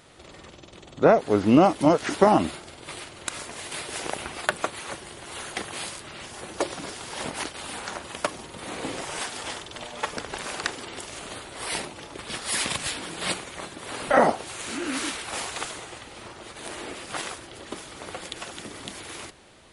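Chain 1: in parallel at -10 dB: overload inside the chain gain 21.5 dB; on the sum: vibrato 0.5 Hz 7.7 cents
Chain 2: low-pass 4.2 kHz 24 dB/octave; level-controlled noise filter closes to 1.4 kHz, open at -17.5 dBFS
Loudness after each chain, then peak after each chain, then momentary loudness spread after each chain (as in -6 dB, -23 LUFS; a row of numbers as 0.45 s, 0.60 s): -26.5 LUFS, -27.0 LUFS; -2.5 dBFS, -3.5 dBFS; 18 LU, 22 LU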